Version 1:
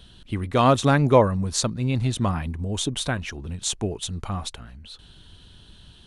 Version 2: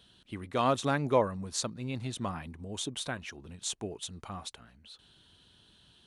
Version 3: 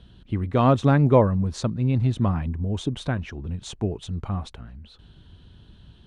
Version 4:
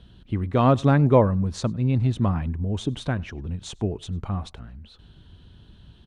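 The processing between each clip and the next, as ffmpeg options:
ffmpeg -i in.wav -af "highpass=frequency=220:poles=1,volume=-8.5dB" out.wav
ffmpeg -i in.wav -af "aemphasis=mode=reproduction:type=riaa,volume=5.5dB" out.wav
ffmpeg -i in.wav -filter_complex "[0:a]asplit=2[link_01][link_02];[link_02]adelay=99.13,volume=-26dB,highshelf=frequency=4000:gain=-2.23[link_03];[link_01][link_03]amix=inputs=2:normalize=0" out.wav

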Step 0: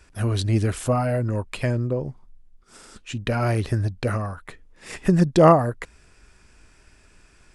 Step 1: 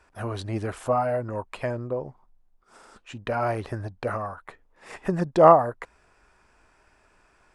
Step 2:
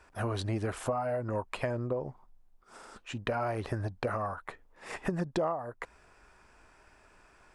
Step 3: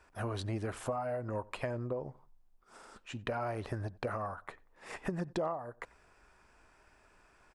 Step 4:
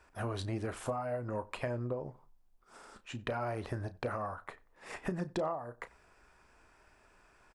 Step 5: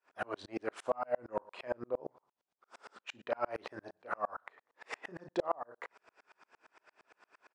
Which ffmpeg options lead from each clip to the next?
ffmpeg -i in.wav -af "equalizer=frequency=860:width_type=o:width=2.3:gain=15,volume=-12dB" out.wav
ffmpeg -i in.wav -af "acompressor=threshold=-29dB:ratio=12,volume=1dB" out.wav
ffmpeg -i in.wav -filter_complex "[0:a]asplit=2[link_01][link_02];[link_02]adelay=92,lowpass=frequency=3200:poles=1,volume=-23dB,asplit=2[link_03][link_04];[link_04]adelay=92,lowpass=frequency=3200:poles=1,volume=0.33[link_05];[link_01][link_03][link_05]amix=inputs=3:normalize=0,volume=-4dB" out.wav
ffmpeg -i in.wav -filter_complex "[0:a]asplit=2[link_01][link_02];[link_02]adelay=33,volume=-13dB[link_03];[link_01][link_03]amix=inputs=2:normalize=0" out.wav
ffmpeg -i in.wav -af "highpass=380,lowpass=5400,aeval=exprs='val(0)*pow(10,-38*if(lt(mod(-8.7*n/s,1),2*abs(-8.7)/1000),1-mod(-8.7*n/s,1)/(2*abs(-8.7)/1000),(mod(-8.7*n/s,1)-2*abs(-8.7)/1000)/(1-2*abs(-8.7)/1000))/20)':channel_layout=same,volume=10dB" out.wav

